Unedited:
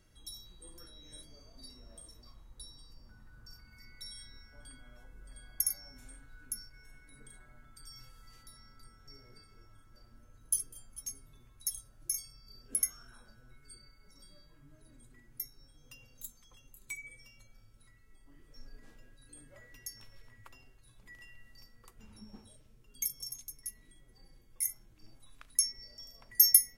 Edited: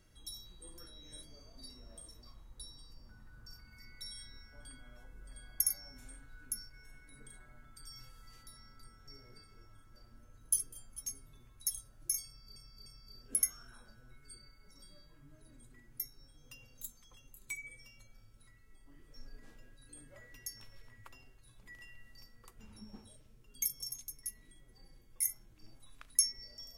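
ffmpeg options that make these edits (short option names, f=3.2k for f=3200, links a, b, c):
-filter_complex "[0:a]asplit=3[a][b][c];[a]atrim=end=12.562[d];[b]atrim=start=12.258:end=12.562[e];[c]atrim=start=12.258[f];[d][e]acrossfade=d=0.004:c1=hsin:c2=hsin[g];[g][f]acrossfade=d=0.004:c1=hsin:c2=hsin"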